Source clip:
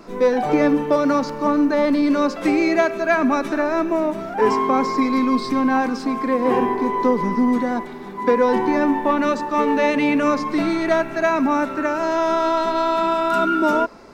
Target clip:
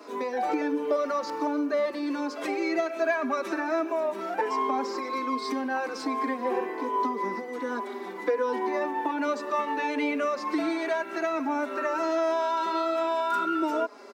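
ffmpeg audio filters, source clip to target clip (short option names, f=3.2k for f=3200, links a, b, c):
-filter_complex "[0:a]acompressor=threshold=-22dB:ratio=6,highpass=f=300:w=0.5412,highpass=f=300:w=1.3066,asplit=2[a][b];[b]adelay=4.3,afreqshift=-1.3[c];[a][c]amix=inputs=2:normalize=1,volume=1.5dB"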